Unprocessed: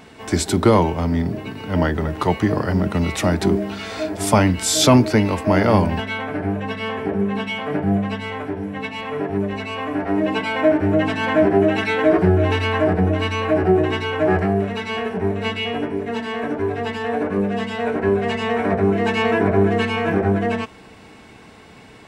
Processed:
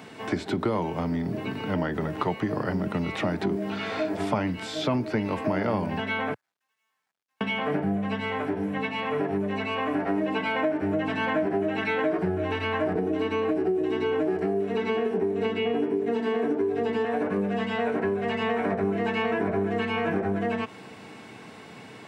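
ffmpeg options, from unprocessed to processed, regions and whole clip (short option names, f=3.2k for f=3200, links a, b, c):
-filter_complex "[0:a]asettb=1/sr,asplit=3[a][b][c];[a]atrim=end=6.344[d];[b]atrim=start=6.34:end=7.41,asetpts=PTS-STARTPTS,afade=t=in:d=0.004:c=qsin,afade=t=out:st=1.066:d=0.004:c=qsin,highpass=f=990:w=0.5412,highpass=f=990:w=1.3066,volume=35dB,asoftclip=hard,volume=-35dB,acrusher=bits=4:mix=0:aa=0.5[e];[c]atrim=start=7.406[f];[d][e]acrossfade=d=0.004:c1=hsin:c2=qsin[g];[g][f]acrossfade=d=0.004:c1=qsin:c2=hsin,asettb=1/sr,asplit=3[h][i][j];[h]atrim=end=12.954[k];[i]atrim=start=12.95:end=17.05,asetpts=PTS-STARTPTS,afade=t=in:d=0.004:c=qsin,afade=t=out:st=4.096:d=0.004:c=qsin,equalizer=f=370:w=0.88:g=14,acrossover=split=290|2900[l][m][n];[l]acompressor=threshold=-24dB:ratio=4[o];[m]acompressor=threshold=-18dB:ratio=4[p];[n]acompressor=threshold=-37dB:ratio=4[q];[o][p][q]amix=inputs=3:normalize=0,bandreject=f=560:w=5.1[r];[j]atrim=start=17.046[s];[k][r]acrossfade=d=0.004:c1=hsin:c2=qsin[t];[t][s]acrossfade=d=0.004:c1=qsin:c2=hsin,acompressor=threshold=-23dB:ratio=6,highpass=f=110:w=0.5412,highpass=f=110:w=1.3066,acrossover=split=3600[u][v];[v]acompressor=threshold=-55dB:ratio=4:attack=1:release=60[w];[u][w]amix=inputs=2:normalize=0"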